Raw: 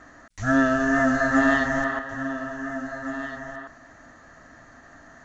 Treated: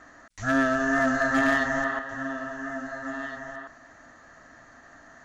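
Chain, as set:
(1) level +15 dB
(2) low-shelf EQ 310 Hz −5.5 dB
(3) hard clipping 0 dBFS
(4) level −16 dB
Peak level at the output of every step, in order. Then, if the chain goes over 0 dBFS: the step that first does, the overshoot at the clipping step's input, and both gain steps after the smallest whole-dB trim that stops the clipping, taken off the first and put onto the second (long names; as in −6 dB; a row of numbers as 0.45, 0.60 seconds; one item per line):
+7.0, +6.0, 0.0, −16.0 dBFS
step 1, 6.0 dB
step 1 +9 dB, step 4 −10 dB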